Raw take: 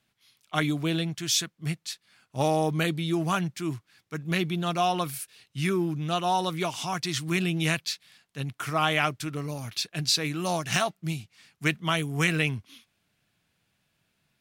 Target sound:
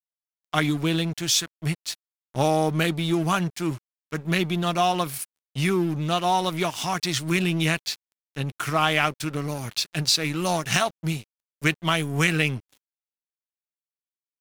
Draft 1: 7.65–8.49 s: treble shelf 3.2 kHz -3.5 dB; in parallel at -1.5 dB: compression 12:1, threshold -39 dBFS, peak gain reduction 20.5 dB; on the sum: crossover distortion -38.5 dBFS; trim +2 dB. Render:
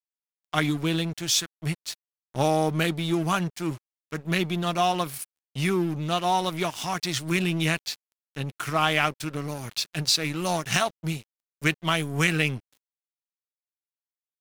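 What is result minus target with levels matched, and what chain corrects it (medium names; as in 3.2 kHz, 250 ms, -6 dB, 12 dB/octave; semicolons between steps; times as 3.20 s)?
compression: peak gain reduction +8 dB
7.65–8.49 s: treble shelf 3.2 kHz -3.5 dB; in parallel at -1.5 dB: compression 12:1, threshold -30 dBFS, peak gain reduction 12 dB; on the sum: crossover distortion -38.5 dBFS; trim +2 dB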